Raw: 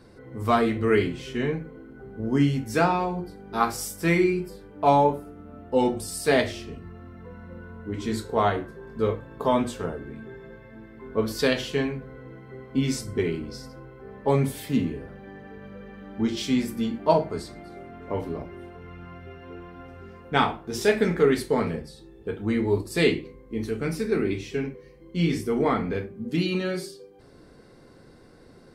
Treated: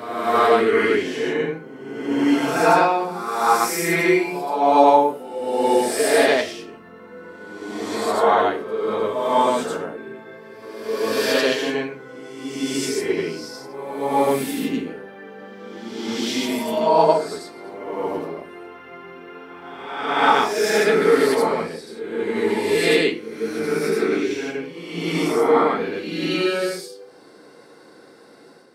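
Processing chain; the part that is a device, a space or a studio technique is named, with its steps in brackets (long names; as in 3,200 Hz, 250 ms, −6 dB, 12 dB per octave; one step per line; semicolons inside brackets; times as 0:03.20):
ghost voice (reversed playback; convolution reverb RT60 1.3 s, pre-delay 71 ms, DRR −5.5 dB; reversed playback; high-pass filter 320 Hz 12 dB per octave)
level +1.5 dB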